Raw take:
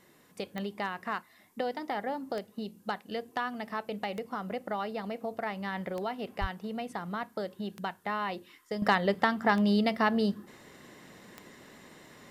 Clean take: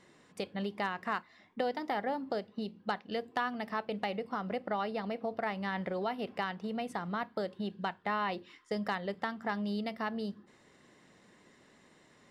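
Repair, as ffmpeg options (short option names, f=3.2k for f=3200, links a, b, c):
-filter_complex "[0:a]adeclick=t=4,asplit=3[a][b][c];[a]afade=t=out:st=6.4:d=0.02[d];[b]highpass=f=140:w=0.5412,highpass=f=140:w=1.3066,afade=t=in:st=6.4:d=0.02,afade=t=out:st=6.52:d=0.02[e];[c]afade=t=in:st=6.52:d=0.02[f];[d][e][f]amix=inputs=3:normalize=0,agate=range=-21dB:threshold=-50dB,asetnsamples=n=441:p=0,asendcmd='8.82 volume volume -9.5dB',volume=0dB"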